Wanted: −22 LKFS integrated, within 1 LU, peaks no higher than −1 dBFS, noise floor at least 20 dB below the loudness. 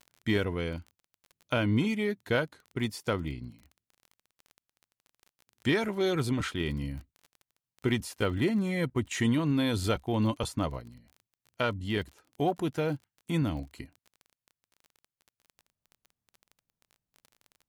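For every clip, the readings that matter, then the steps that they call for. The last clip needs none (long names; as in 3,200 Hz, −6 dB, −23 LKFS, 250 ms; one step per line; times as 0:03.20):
crackle rate 25 per second; integrated loudness −30.5 LKFS; sample peak −14.5 dBFS; target loudness −22.0 LKFS
→ click removal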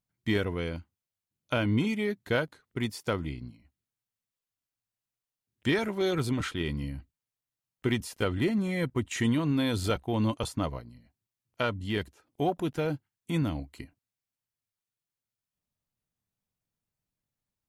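crackle rate 0 per second; integrated loudness −30.5 LKFS; sample peak −14.5 dBFS; target loudness −22.0 LKFS
→ level +8.5 dB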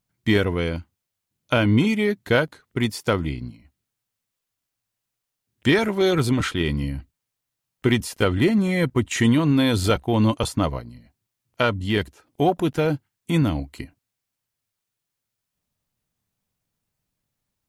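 integrated loudness −22.0 LKFS; sample peak −6.0 dBFS; background noise floor −83 dBFS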